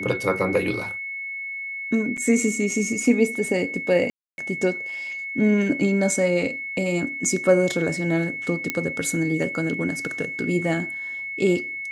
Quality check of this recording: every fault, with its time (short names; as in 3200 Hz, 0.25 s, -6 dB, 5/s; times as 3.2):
tone 2200 Hz -29 dBFS
2.17–2.18 gap 6.6 ms
4.1–4.38 gap 0.281 s
8.7 pop -8 dBFS